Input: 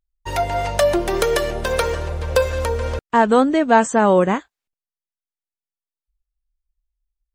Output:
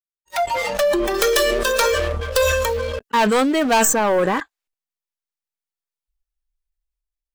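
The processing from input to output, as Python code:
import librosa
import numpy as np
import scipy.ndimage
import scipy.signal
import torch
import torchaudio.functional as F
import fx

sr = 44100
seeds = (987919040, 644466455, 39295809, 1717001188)

y = fx.tracing_dist(x, sr, depth_ms=0.11)
y = fx.noise_reduce_blind(y, sr, reduce_db=25)
y = fx.peak_eq(y, sr, hz=110.0, db=-12.0, octaves=2.5)
y = fx.leveller(y, sr, passes=3)
y = fx.high_shelf(y, sr, hz=2700.0, db=8.5, at=(1.14, 3.85))
y = fx.sustainer(y, sr, db_per_s=23.0)
y = F.gain(torch.from_numpy(y), -9.0).numpy()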